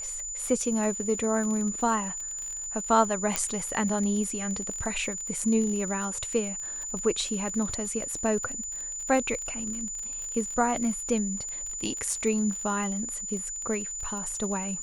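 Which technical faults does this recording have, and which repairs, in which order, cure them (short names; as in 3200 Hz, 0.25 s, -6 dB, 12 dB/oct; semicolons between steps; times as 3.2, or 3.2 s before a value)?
crackle 34/s -33 dBFS
tone 7000 Hz -33 dBFS
3.36 pop -9 dBFS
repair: de-click; notch 7000 Hz, Q 30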